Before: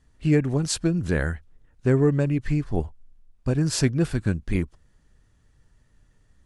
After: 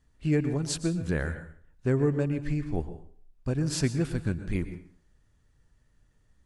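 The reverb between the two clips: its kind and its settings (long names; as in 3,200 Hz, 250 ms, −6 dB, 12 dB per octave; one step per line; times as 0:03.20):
dense smooth reverb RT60 0.51 s, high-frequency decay 0.8×, pre-delay 105 ms, DRR 11 dB
level −5.5 dB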